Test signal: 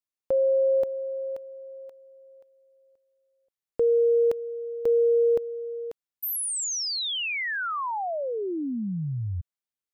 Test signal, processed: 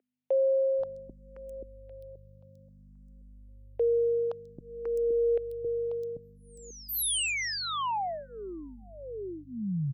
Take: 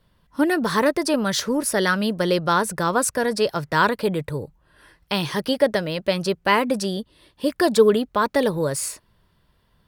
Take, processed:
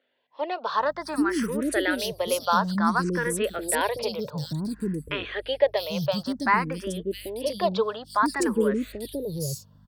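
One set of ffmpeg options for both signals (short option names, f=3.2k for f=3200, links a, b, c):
-filter_complex "[0:a]aeval=exprs='val(0)+0.00398*(sin(2*PI*50*n/s)+sin(2*PI*2*50*n/s)/2+sin(2*PI*3*50*n/s)/3+sin(2*PI*4*50*n/s)/4+sin(2*PI*5*50*n/s)/5)':c=same,acrossover=split=400|4000[a][b][c];[c]adelay=660[d];[a]adelay=790[e];[e][b][d]amix=inputs=3:normalize=0,asplit=2[f][g];[g]afreqshift=0.56[h];[f][h]amix=inputs=2:normalize=1"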